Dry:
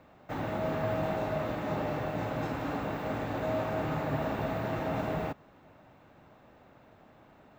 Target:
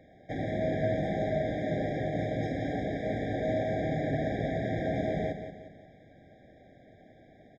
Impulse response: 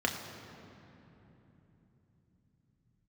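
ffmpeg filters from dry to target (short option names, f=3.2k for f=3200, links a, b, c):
-af "lowpass=f=7.3k:w=0.5412,lowpass=f=7.3k:w=1.3066,aecho=1:1:178|356|534|712|890:0.335|0.147|0.0648|0.0285|0.0126,afftfilt=real='re*eq(mod(floor(b*sr/1024/790),2),0)':imag='im*eq(mod(floor(b*sr/1024/790),2),0)':win_size=1024:overlap=0.75,volume=2dB"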